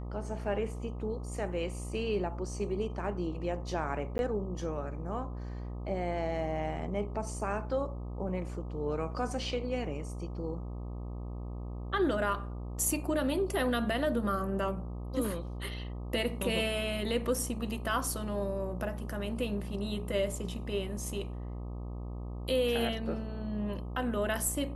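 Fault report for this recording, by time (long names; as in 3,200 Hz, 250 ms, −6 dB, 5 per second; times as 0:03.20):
mains buzz 60 Hz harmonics 21 −39 dBFS
0:04.18–0:04.19: drop-out 11 ms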